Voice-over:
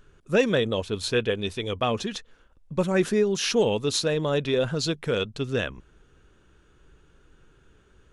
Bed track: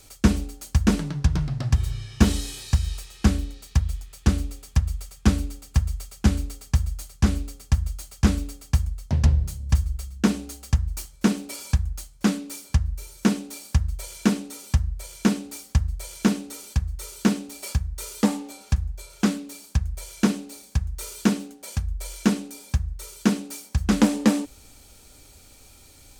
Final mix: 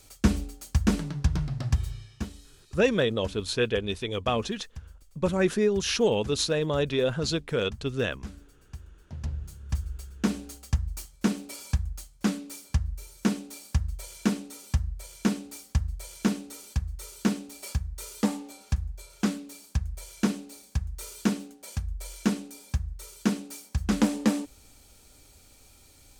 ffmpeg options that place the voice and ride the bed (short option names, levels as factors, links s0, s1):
-filter_complex "[0:a]adelay=2450,volume=0.841[s0];[1:a]volume=4.22,afade=t=out:st=1.7:d=0.59:silence=0.133352,afade=t=in:st=8.99:d=1.41:silence=0.149624[s1];[s0][s1]amix=inputs=2:normalize=0"